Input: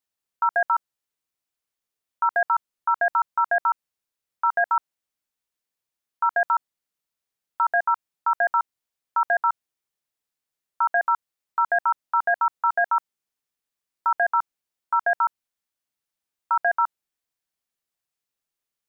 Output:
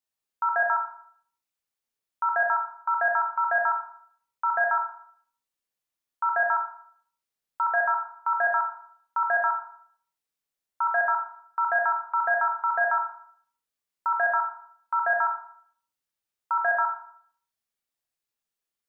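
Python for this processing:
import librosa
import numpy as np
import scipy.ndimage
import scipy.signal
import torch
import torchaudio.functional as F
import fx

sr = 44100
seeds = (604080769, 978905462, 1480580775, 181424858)

y = fx.rev_schroeder(x, sr, rt60_s=0.57, comb_ms=27, drr_db=1.0)
y = y * librosa.db_to_amplitude(-4.5)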